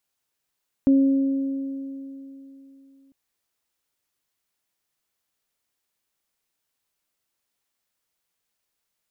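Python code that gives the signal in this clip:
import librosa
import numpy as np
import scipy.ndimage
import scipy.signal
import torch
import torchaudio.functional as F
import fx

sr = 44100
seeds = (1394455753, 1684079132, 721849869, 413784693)

y = fx.additive(sr, length_s=2.25, hz=272.0, level_db=-12.5, upper_db=(-16.0,), decay_s=3.26, upper_decays_s=(2.9,))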